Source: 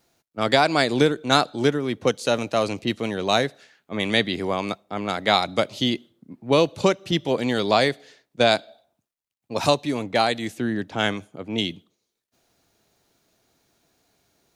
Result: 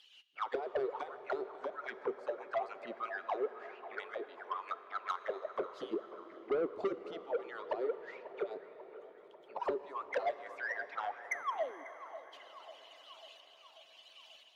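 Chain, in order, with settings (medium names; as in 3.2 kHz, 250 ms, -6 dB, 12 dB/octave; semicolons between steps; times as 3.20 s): harmonic-percussive separation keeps percussive; in parallel at -2 dB: compression 6:1, threshold -30 dBFS, peak gain reduction 16 dB; 5.72–7.05 s: on the sum: waveshaping leveller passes 2; upward compressor, threshold -23 dBFS; 11.31–11.84 s: painted sound fall 260–2200 Hz -24 dBFS; auto-wah 390–3400 Hz, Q 14, down, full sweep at -15.5 dBFS; tremolo saw up 0.97 Hz, depth 60%; saturation -32.5 dBFS, distortion -9 dB; band-passed feedback delay 542 ms, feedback 62%, band-pass 910 Hz, level -13.5 dB; on a send at -12 dB: reverberation RT60 6.1 s, pre-delay 18 ms; on the sum: trim +4.5 dB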